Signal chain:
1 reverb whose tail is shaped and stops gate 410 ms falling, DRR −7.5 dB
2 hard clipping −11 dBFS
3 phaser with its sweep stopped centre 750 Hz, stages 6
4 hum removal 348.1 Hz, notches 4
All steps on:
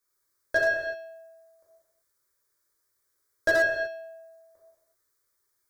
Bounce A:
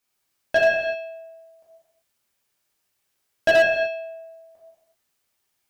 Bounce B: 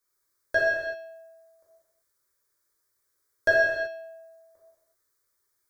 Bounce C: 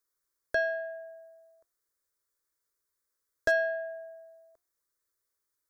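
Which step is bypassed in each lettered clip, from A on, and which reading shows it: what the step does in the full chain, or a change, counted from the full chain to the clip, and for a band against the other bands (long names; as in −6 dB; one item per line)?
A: 3, change in crest factor −5.0 dB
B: 2, distortion level −17 dB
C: 1, change in momentary loudness spread +4 LU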